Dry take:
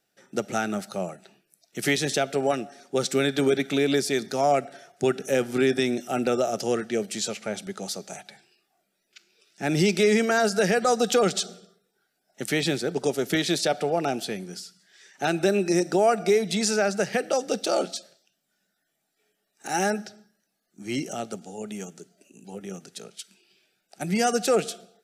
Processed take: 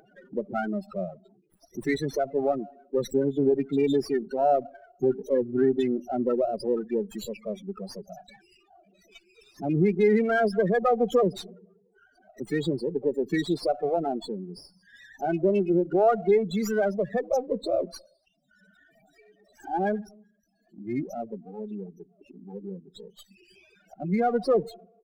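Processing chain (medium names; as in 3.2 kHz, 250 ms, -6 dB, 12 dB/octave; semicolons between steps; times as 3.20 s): loudest bins only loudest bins 8; upward compressor, threshold -41 dBFS; sliding maximum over 3 samples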